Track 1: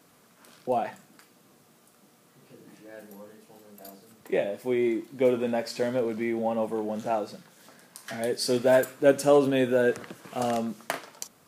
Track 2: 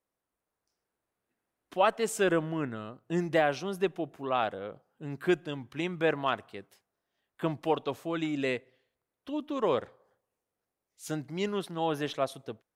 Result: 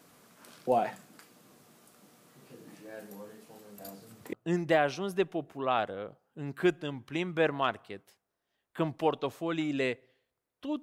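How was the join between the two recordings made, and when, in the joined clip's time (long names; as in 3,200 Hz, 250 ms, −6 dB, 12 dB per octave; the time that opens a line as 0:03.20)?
track 1
0:03.77–0:04.33: parametric band 99 Hz +9 dB 1.2 octaves
0:04.33: continue with track 2 from 0:02.97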